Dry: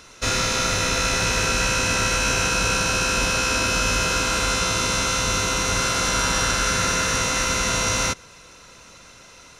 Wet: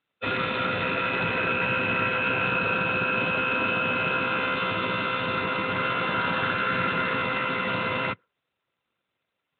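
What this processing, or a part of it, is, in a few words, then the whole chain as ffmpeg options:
mobile call with aggressive noise cancelling: -af "highpass=frequency=110:width=0.5412,highpass=frequency=110:width=1.3066,afftdn=noise_reduction=31:noise_floor=-29" -ar 8000 -c:a libopencore_amrnb -b:a 12200

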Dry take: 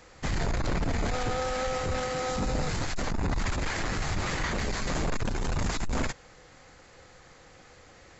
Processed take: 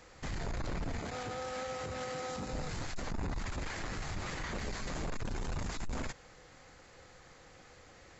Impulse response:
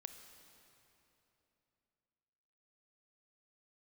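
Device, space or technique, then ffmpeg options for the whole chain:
clipper into limiter: -filter_complex "[0:a]asettb=1/sr,asplit=3[link_01][link_02][link_03];[link_01]atrim=end=0.994[link_04];[link_02]atrim=start=0.99:end=2.53,asetpts=PTS-STARTPTS,afade=type=in:duration=0.004:curve=qsin,afade=type=out:start_time=1.536:duration=0.004:curve=qsin,highpass=87[link_05];[link_03]atrim=start=2.526[link_06];[link_04][link_05]acrossfade=duration=0.004:curve1=hsin:curve2=qsin[link_07];[link_07][link_06]acrossfade=duration=0.004:curve1=qsin:curve2=hsin,asoftclip=type=hard:threshold=-21dB,alimiter=level_in=4dB:limit=-24dB:level=0:latency=1:release=51,volume=-4dB,volume=-3.5dB"

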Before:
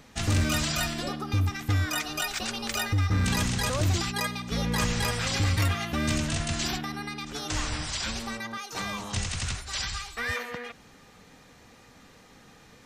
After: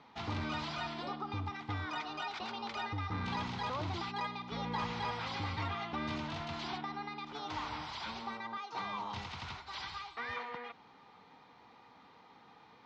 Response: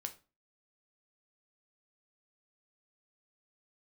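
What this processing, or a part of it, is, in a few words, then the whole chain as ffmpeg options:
overdrive pedal into a guitar cabinet: -filter_complex "[0:a]asplit=2[link_01][link_02];[link_02]highpass=frequency=720:poles=1,volume=12dB,asoftclip=type=tanh:threshold=-18.5dB[link_03];[link_01][link_03]amix=inputs=2:normalize=0,lowpass=frequency=2400:poles=1,volume=-6dB,highpass=85,equalizer=frequency=560:width_type=q:width=4:gain=-6,equalizer=frequency=910:width_type=q:width=4:gain=9,equalizer=frequency=1700:width_type=q:width=4:gain=-8,equalizer=frequency=2700:width_type=q:width=4:gain=-5,lowpass=frequency=4400:width=0.5412,lowpass=frequency=4400:width=1.3066,volume=-8.5dB"

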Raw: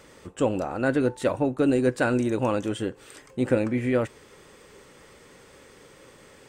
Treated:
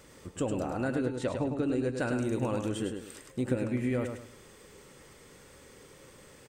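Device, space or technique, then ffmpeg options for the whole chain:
ASMR close-microphone chain: -filter_complex "[0:a]asettb=1/sr,asplit=3[link_01][link_02][link_03];[link_01]atrim=end=0.954[link_04];[link_02]atrim=start=0.95:end=2,asetpts=PTS-STARTPTS,afade=type=in:duration=0.004:curve=qsin,afade=type=out:start_time=1.046:duration=0.004:curve=qsin,lowpass=6500[link_05];[link_03]atrim=start=1.996[link_06];[link_04][link_05]acrossfade=duration=0.004:curve1=hsin:curve2=qsin[link_07];[link_07][link_06]acrossfade=duration=0.004:curve1=qsin:curve2=hsin,lowshelf=frequency=230:gain=6,acompressor=threshold=-21dB:ratio=6,highshelf=frequency=6100:gain=8,aecho=1:1:104|208|312|416:0.501|0.16|0.0513|0.0164,volume=-6dB"

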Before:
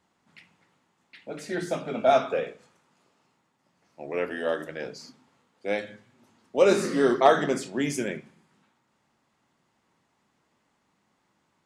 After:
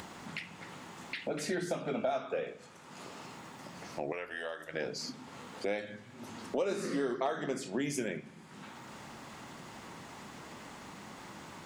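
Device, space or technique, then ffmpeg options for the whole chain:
upward and downward compression: -filter_complex "[0:a]acompressor=mode=upward:threshold=-36dB:ratio=2.5,acompressor=threshold=-36dB:ratio=6,asettb=1/sr,asplit=3[link_01][link_02][link_03];[link_01]atrim=end=4.124[link_04];[link_02]atrim=start=4.12:end=4.74,asetpts=PTS-STARTPTS,afade=type=in:duration=0.004:curve=qsin,afade=type=out:start_time=0.616:duration=0.004:curve=qsin,equalizer=frequency=250:width_type=o:width=2.1:gain=-14.5[link_05];[link_03]atrim=start=4.736[link_06];[link_04][link_05]acrossfade=duration=0.004:curve1=hsin:curve2=qsin[link_07];[link_07][link_06]acrossfade=duration=0.004:curve1=qsin:curve2=hsin,volume=4.5dB"

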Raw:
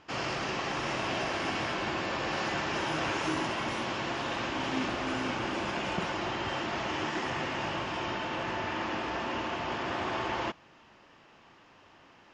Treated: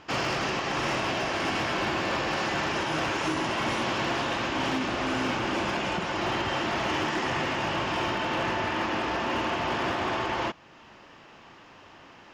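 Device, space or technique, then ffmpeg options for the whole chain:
limiter into clipper: -af "alimiter=level_in=0.5dB:limit=-24dB:level=0:latency=1:release=409,volume=-0.5dB,asoftclip=type=hard:threshold=-28.5dB,volume=7dB"

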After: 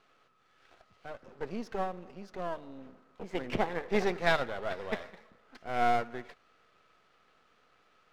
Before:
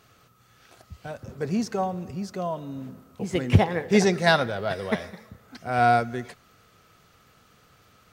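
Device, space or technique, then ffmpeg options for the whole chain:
crystal radio: -af "highpass=330,lowpass=3300,aeval=exprs='if(lt(val(0),0),0.251*val(0),val(0))':channel_layout=same,volume=-3dB"

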